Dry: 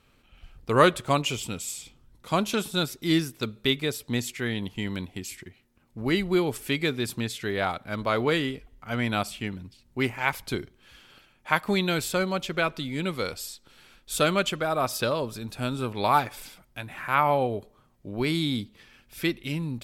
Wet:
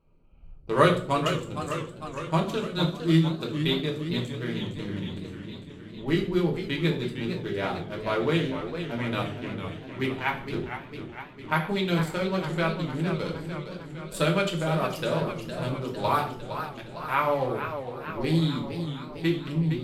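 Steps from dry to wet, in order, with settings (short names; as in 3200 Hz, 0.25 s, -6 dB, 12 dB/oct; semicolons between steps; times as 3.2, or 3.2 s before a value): Wiener smoothing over 25 samples; reverb RT60 0.50 s, pre-delay 3 ms, DRR -0.5 dB; warbling echo 0.457 s, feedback 64%, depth 146 cents, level -9 dB; gain -5 dB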